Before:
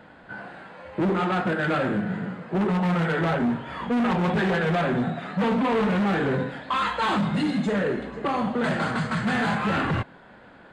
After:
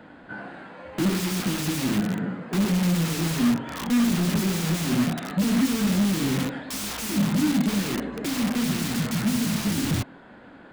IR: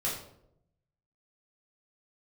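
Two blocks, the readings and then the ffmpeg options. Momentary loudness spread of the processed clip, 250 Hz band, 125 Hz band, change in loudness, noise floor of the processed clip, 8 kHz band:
8 LU, +2.0 dB, +1.0 dB, 0.0 dB, -47 dBFS, n/a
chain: -filter_complex "[0:a]equalizer=f=280:w=2.1:g=7.5,acrossover=split=330[a][b];[b]aeval=exprs='(mod(23.7*val(0)+1,2)-1)/23.7':c=same[c];[a][c]amix=inputs=2:normalize=0"

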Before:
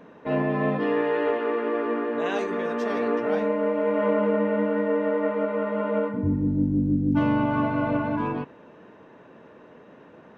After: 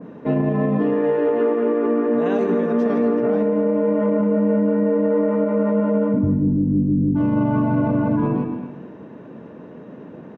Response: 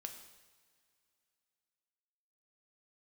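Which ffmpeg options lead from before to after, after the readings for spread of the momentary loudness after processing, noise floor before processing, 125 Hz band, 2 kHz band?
11 LU, -50 dBFS, +7.0 dB, -3.5 dB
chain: -filter_complex "[0:a]equalizer=f=180:w=0.39:g=14.5,asplit=2[a][b];[1:a]atrim=start_sample=2205,adelay=148[c];[b][c]afir=irnorm=-1:irlink=0,volume=-8dB[d];[a][d]amix=inputs=2:normalize=0,alimiter=limit=-12dB:level=0:latency=1:release=56,asplit=2[e][f];[f]adelay=227.4,volume=-12dB,highshelf=f=4k:g=-5.12[g];[e][g]amix=inputs=2:normalize=0,adynamicequalizer=threshold=0.0126:dfrequency=2000:dqfactor=0.7:tfrequency=2000:tqfactor=0.7:attack=5:release=100:ratio=0.375:range=2.5:mode=cutabove:tftype=highshelf"

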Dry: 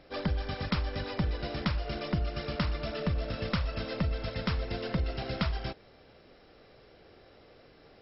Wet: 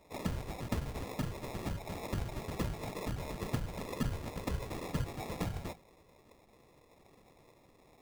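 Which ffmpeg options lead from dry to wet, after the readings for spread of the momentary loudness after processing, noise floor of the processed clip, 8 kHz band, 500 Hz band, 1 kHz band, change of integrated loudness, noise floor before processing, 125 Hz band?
3 LU, -64 dBFS, n/a, -5.5 dB, -4.0 dB, -6.0 dB, -58 dBFS, -5.5 dB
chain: -af "flanger=delay=8.2:depth=3.5:regen=-77:speed=0.63:shape=triangular,afftfilt=real='hypot(re,im)*cos(2*PI*random(0))':imag='hypot(re,im)*sin(2*PI*random(1))':win_size=512:overlap=0.75,acrusher=samples=29:mix=1:aa=0.000001,volume=5dB"

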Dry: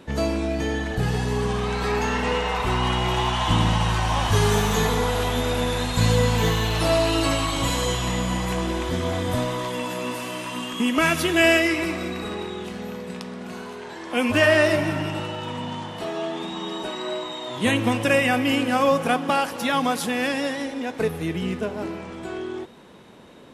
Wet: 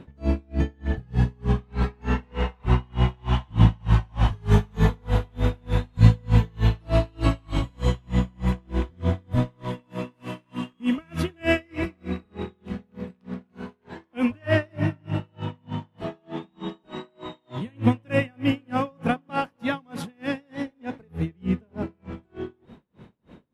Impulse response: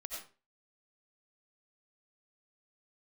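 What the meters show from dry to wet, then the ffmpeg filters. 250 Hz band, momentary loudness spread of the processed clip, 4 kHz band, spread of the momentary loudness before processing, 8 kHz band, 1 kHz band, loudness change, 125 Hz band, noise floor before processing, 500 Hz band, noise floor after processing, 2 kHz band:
-2.0 dB, 15 LU, -12.5 dB, 12 LU, under -15 dB, -8.0 dB, -3.0 dB, +2.5 dB, -37 dBFS, -7.5 dB, -65 dBFS, -9.5 dB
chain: -af "bass=f=250:g=12,treble=f=4k:g=-12,aeval=exprs='val(0)*pow(10,-37*(0.5-0.5*cos(2*PI*3.3*n/s))/20)':c=same,volume=-1.5dB"

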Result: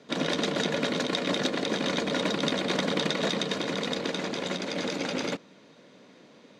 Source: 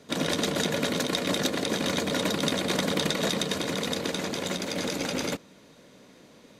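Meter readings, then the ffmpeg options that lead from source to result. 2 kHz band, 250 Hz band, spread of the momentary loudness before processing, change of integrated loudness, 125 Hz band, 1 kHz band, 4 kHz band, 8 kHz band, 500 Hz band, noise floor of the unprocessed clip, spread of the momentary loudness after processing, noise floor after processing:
0.0 dB, -0.5 dB, 4 LU, -1.0 dB, -2.5 dB, 0.0 dB, -1.0 dB, -6.5 dB, 0.0 dB, -54 dBFS, 4 LU, -55 dBFS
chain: -af "highpass=150,lowpass=5.1k"

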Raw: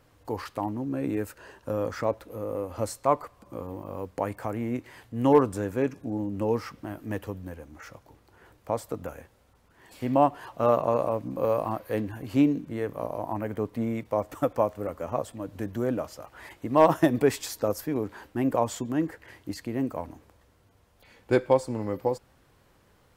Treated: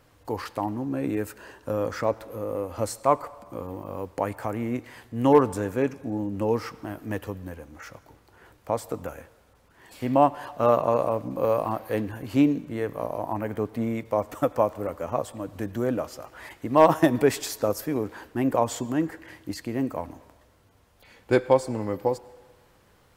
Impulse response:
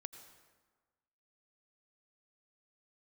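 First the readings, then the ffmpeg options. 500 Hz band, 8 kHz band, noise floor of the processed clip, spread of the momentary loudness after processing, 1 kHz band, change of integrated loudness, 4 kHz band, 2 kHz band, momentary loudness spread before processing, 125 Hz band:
+2.0 dB, +3.0 dB, -60 dBFS, 16 LU, +2.5 dB, +2.0 dB, +3.0 dB, +3.0 dB, 16 LU, +1.0 dB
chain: -filter_complex "[0:a]asplit=2[a][b];[1:a]atrim=start_sample=2205,lowshelf=f=390:g=-10[c];[b][c]afir=irnorm=-1:irlink=0,volume=-2.5dB[d];[a][d]amix=inputs=2:normalize=0"

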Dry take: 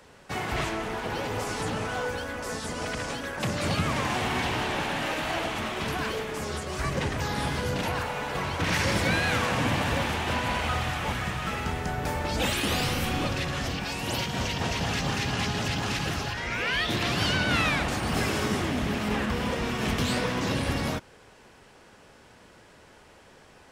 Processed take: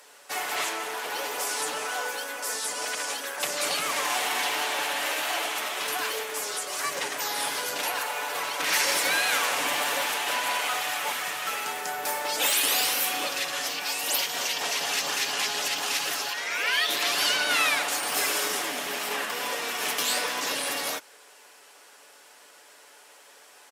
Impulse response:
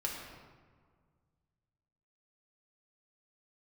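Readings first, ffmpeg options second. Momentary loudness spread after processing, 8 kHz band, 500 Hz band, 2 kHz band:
8 LU, +9.5 dB, -3.0 dB, +2.0 dB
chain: -af "highpass=440,aemphasis=mode=production:type=bsi,aecho=1:1:6.9:0.42,aresample=32000,aresample=44100"

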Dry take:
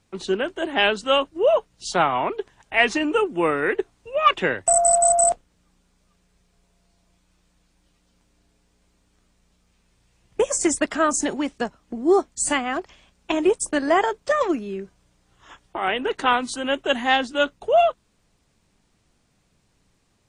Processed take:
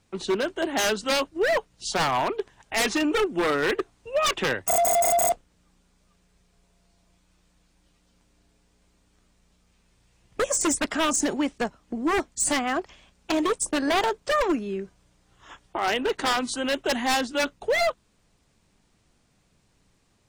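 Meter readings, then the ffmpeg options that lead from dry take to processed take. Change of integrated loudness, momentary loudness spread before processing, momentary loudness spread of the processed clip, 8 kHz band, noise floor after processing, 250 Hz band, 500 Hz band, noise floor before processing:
-3.5 dB, 10 LU, 7 LU, -4.0 dB, -66 dBFS, -2.0 dB, -4.5 dB, -66 dBFS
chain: -af "aeval=exprs='0.141*(abs(mod(val(0)/0.141+3,4)-2)-1)':c=same"

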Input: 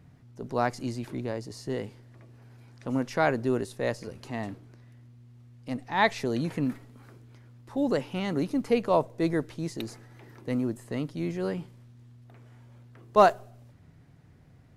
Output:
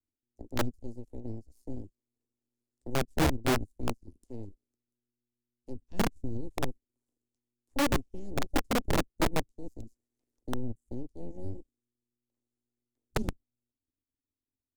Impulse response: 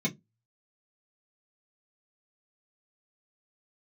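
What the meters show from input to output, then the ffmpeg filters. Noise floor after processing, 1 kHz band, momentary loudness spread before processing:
under -85 dBFS, -8.5 dB, 15 LU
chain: -filter_complex "[0:a]aeval=exprs='0.501*(cos(1*acos(clip(val(0)/0.501,-1,1)))-cos(1*PI/2))+0.178*(cos(2*acos(clip(val(0)/0.501,-1,1)))-cos(2*PI/2))+0.158*(cos(3*acos(clip(val(0)/0.501,-1,1)))-cos(3*PI/2))+0.00501*(cos(4*acos(clip(val(0)/0.501,-1,1)))-cos(4*PI/2))+0.178*(cos(8*acos(clip(val(0)/0.501,-1,1)))-cos(8*PI/2))':c=same,firequalizer=gain_entry='entry(100,0);entry(150,-16);entry(250,4);entry(670,-7);entry(1400,-14);entry(7300,13);entry(12000,8)':delay=0.05:min_phase=1,acrossover=split=240[a][b];[b]acompressor=threshold=-45dB:ratio=10[c];[a][c]amix=inputs=2:normalize=0,afwtdn=0.00891,acrossover=split=1400[d][e];[d]aeval=exprs='(mod(11.9*val(0)+1,2)-1)/11.9':c=same[f];[f][e]amix=inputs=2:normalize=0"

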